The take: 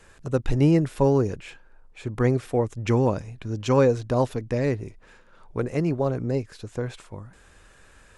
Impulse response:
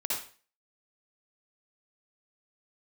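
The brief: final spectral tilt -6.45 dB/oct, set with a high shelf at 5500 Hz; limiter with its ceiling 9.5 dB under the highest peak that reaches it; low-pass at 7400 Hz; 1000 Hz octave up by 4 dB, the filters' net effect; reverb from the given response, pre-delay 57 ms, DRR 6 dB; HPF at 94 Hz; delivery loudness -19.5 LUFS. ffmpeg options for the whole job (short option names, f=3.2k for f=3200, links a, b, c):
-filter_complex "[0:a]highpass=94,lowpass=7.4k,equalizer=f=1k:t=o:g=5,highshelf=f=5.5k:g=-7,alimiter=limit=-16dB:level=0:latency=1,asplit=2[a][b];[1:a]atrim=start_sample=2205,adelay=57[c];[b][c]afir=irnorm=-1:irlink=0,volume=-11.5dB[d];[a][d]amix=inputs=2:normalize=0,volume=8dB"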